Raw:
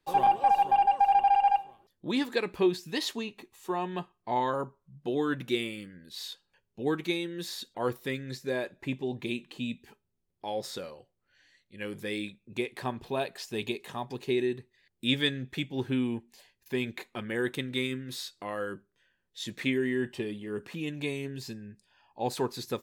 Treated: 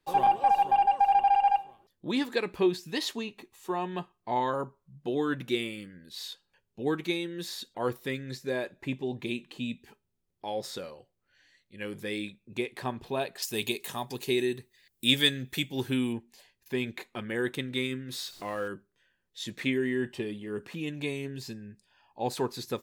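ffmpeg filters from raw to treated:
-filter_complex "[0:a]asettb=1/sr,asplit=3[a][b][c];[a]atrim=end=13.424[d];[b]atrim=start=13.42:end=16.13,asetpts=PTS-STARTPTS,afade=t=in:d=0.004:c=qsin,afade=t=out:st=2.706:d=0.004:c=qsin,aemphasis=mode=production:type=75kf[e];[c]atrim=start=16.126[f];[d][e]acrossfade=d=0.004:c1=hsin:c2=qsin[g];[g][f]acrossfade=d=0.004:c1=qsin:c2=hsin,asettb=1/sr,asplit=3[h][i][j];[h]atrim=end=18.134[k];[i]atrim=start=18.13:end=18.68,asetpts=PTS-STARTPTS,afade=t=in:d=0.004:c=qsin,afade=t=out:st=0.546:d=0.004:c=qsin,aeval=exprs='val(0)+0.5*0.00501*sgn(val(0))':c=same[l];[j]atrim=start=18.676[m];[k][l]acrossfade=d=0.004:c1=hsin:c2=qsin[n];[n][m]acrossfade=d=0.004:c1=qsin:c2=hsin"

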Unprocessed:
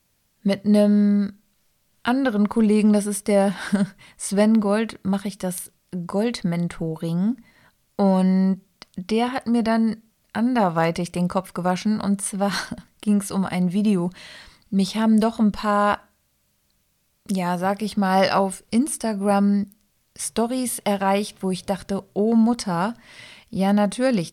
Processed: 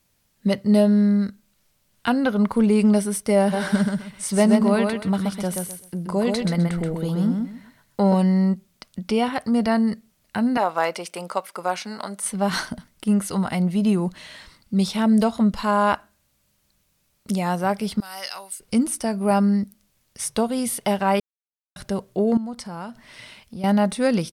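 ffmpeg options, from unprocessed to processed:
-filter_complex "[0:a]asplit=3[a][b][c];[a]afade=t=out:st=3.52:d=0.02[d];[b]aecho=1:1:129|258|387:0.631|0.151|0.0363,afade=t=in:st=3.52:d=0.02,afade=t=out:st=8.13:d=0.02[e];[c]afade=t=in:st=8.13:d=0.02[f];[d][e][f]amix=inputs=3:normalize=0,asettb=1/sr,asplit=3[g][h][i];[g]atrim=end=10.574[j];[h]atrim=start=10.57:end=12.25,asetpts=PTS-STARTPTS,afade=t=in:d=0.004:c=qsin,afade=t=out:st=1.676:d=0.004:c=qsin,highpass=470[k];[i]atrim=start=12.246[l];[j][k]acrossfade=d=0.004:c1=hsin:c2=qsin[m];[m][l]acrossfade=d=0.004:c1=qsin:c2=hsin,asettb=1/sr,asplit=3[n][o][p];[n]atrim=end=18.004[q];[o]atrim=start=18:end=18.6,asetpts=PTS-STARTPTS,afade=t=in:d=0.004:c=qsin,afade=t=out:st=0.596:d=0.004:c=qsin,aderivative[r];[p]atrim=start=18.596[s];[q][r]acrossfade=d=0.004:c1=hsin:c2=qsin[t];[t][s]acrossfade=d=0.004:c1=qsin:c2=hsin,asettb=1/sr,asplit=3[u][v][w];[u]atrim=end=22.374[x];[v]atrim=start=22.37:end=23.64,asetpts=PTS-STARTPTS,afade=t=in:d=0.004:c=qsin,afade=t=out:st=1.266:d=0.004:c=qsin,acompressor=threshold=-35dB:ratio=2.5:attack=3.2:release=140:knee=1:detection=peak[y];[w]atrim=start=23.636[z];[x][y]acrossfade=d=0.004:c1=hsin:c2=qsin[aa];[aa][z]acrossfade=d=0.004:c1=qsin:c2=hsin,asplit=3[ab][ac][ad];[ab]atrim=end=21.2,asetpts=PTS-STARTPTS,afade=t=out:st=21.196:d=0.004:c=hsin[ae];[ac]atrim=start=21.2:end=21.76,asetpts=PTS-STARTPTS,volume=0[af];[ad]atrim=start=21.76,asetpts=PTS-STARTPTS,afade=t=in:d=0.004:c=hsin[ag];[ae][af][ag]concat=n=3:v=0:a=1"

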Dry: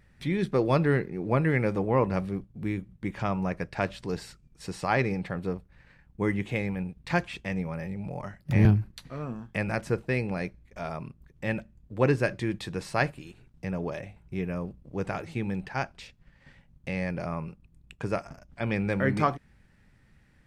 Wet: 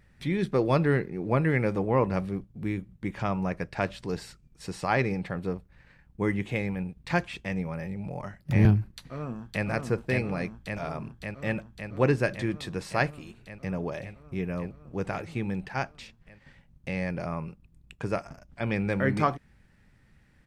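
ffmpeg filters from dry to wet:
-filter_complex "[0:a]asplit=2[a][b];[b]afade=t=in:st=8.89:d=0.01,afade=t=out:st=9.66:d=0.01,aecho=0:1:560|1120|1680|2240|2800|3360|3920|4480|5040|5600|6160|6720:0.707946|0.566357|0.453085|0.362468|0.289975|0.23198|0.185584|0.148467|0.118774|0.0950189|0.0760151|0.0608121[c];[a][c]amix=inputs=2:normalize=0"

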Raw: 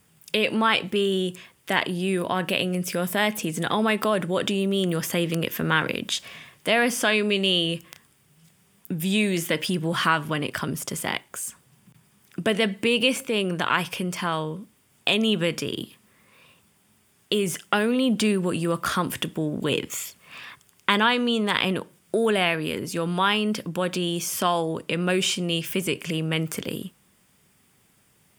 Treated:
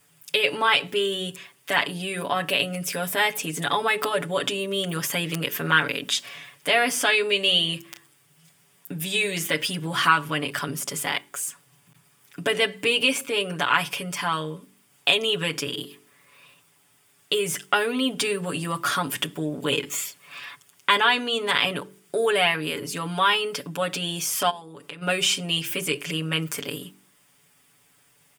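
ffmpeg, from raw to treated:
-filter_complex "[0:a]asplit=3[a][b][c];[a]afade=t=out:st=24.49:d=0.02[d];[b]acompressor=threshold=-37dB:ratio=4:attack=3.2:release=140:knee=1:detection=peak,afade=t=in:st=24.49:d=0.02,afade=t=out:st=25.01:d=0.02[e];[c]afade=t=in:st=25.01:d=0.02[f];[d][e][f]amix=inputs=3:normalize=0,lowshelf=f=400:g=-8.5,aecho=1:1:7:0.92,bandreject=f=47.81:t=h:w=4,bandreject=f=95.62:t=h:w=4,bandreject=f=143.43:t=h:w=4,bandreject=f=191.24:t=h:w=4,bandreject=f=239.05:t=h:w=4,bandreject=f=286.86:t=h:w=4,bandreject=f=334.67:t=h:w=4,bandreject=f=382.48:t=h:w=4,bandreject=f=430.29:t=h:w=4"

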